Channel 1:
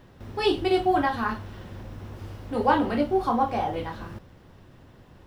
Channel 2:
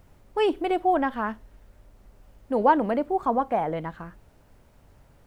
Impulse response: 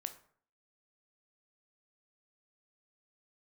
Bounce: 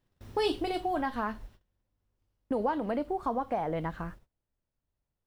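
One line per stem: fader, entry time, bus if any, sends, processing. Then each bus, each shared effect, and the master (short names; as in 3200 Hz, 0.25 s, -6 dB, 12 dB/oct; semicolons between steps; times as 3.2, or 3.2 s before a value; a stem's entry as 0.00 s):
-7.5 dB, 0.00 s, no send, high shelf 3500 Hz +11.5 dB; auto duck -16 dB, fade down 1.70 s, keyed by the second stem
+1.0 dB, 0.00 s, no send, gate -44 dBFS, range -14 dB; compressor 4:1, threshold -30 dBFS, peak gain reduction 14 dB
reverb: off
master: gate -55 dBFS, range -21 dB; low shelf 92 Hz +5.5 dB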